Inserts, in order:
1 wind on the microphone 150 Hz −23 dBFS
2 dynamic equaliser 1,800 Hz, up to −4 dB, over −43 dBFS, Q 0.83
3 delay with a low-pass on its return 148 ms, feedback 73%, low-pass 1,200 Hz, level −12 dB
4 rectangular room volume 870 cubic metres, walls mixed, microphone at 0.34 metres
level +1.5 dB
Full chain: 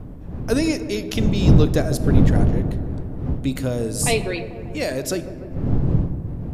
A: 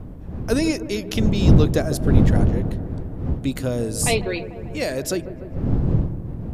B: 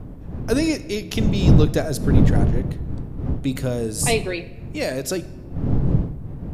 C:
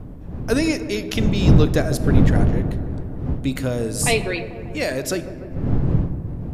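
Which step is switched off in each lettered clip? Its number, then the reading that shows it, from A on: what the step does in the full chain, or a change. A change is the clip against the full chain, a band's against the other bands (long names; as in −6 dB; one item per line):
4, echo-to-direct ratio −9.5 dB to −13.0 dB
3, echo-to-direct ratio −9.5 dB to −13.0 dB
2, 2 kHz band +3.0 dB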